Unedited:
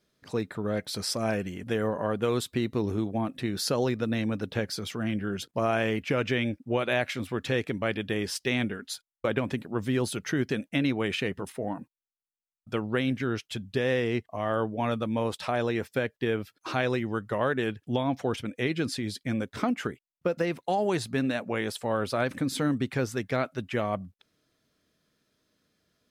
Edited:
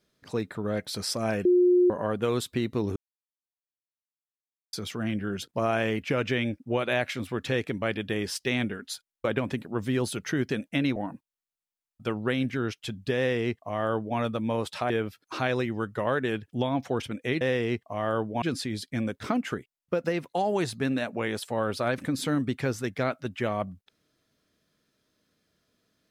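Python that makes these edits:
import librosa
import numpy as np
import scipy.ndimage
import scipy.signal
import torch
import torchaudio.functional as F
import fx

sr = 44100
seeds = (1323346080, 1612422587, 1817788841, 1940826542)

y = fx.edit(x, sr, fx.bleep(start_s=1.45, length_s=0.45, hz=358.0, db=-16.5),
    fx.silence(start_s=2.96, length_s=1.77),
    fx.cut(start_s=10.96, length_s=0.67),
    fx.duplicate(start_s=13.84, length_s=1.01, to_s=18.75),
    fx.cut(start_s=15.57, length_s=0.67), tone=tone)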